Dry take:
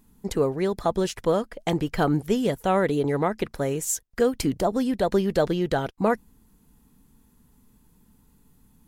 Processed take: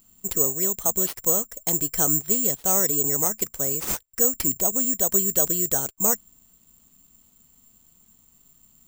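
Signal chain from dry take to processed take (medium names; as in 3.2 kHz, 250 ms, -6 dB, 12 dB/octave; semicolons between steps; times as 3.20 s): careless resampling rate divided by 6×, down none, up zero stuff; trim -7 dB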